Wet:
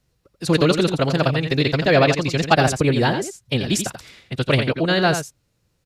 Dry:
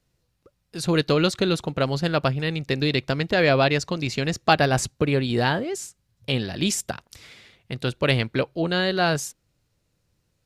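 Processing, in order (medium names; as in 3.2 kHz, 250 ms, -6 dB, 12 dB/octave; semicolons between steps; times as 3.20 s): time stretch by phase-locked vocoder 0.56×; delay 86 ms -8.5 dB; trim +4.5 dB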